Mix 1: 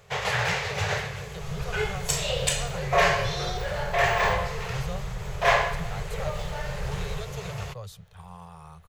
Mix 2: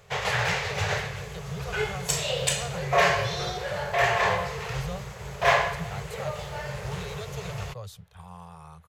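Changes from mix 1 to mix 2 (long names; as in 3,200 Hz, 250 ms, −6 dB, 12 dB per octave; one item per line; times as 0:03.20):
second sound: add band-pass filter 380–3,500 Hz
reverb: off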